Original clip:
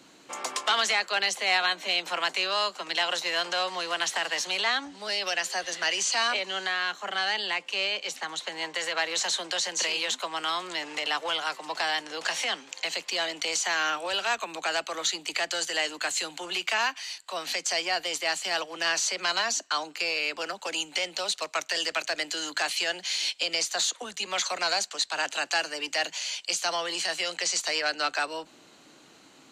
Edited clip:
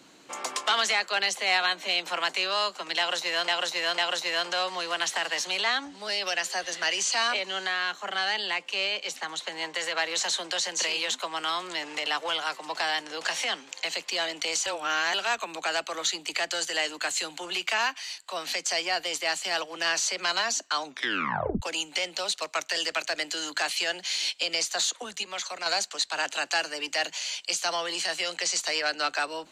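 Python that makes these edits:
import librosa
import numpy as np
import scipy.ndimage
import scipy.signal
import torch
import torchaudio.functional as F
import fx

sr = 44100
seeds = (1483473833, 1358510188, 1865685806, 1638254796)

y = fx.edit(x, sr, fx.repeat(start_s=2.98, length_s=0.5, count=3),
    fx.reverse_span(start_s=13.66, length_s=0.48),
    fx.tape_stop(start_s=19.83, length_s=0.79),
    fx.clip_gain(start_s=24.23, length_s=0.43, db=-5.5), tone=tone)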